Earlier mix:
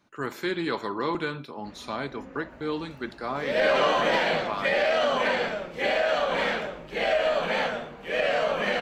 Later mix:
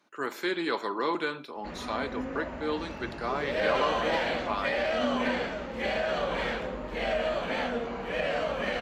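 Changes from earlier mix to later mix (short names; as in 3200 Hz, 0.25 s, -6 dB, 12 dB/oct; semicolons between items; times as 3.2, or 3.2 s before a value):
speech: add HPF 290 Hz 12 dB/oct; first sound +9.5 dB; second sound -5.5 dB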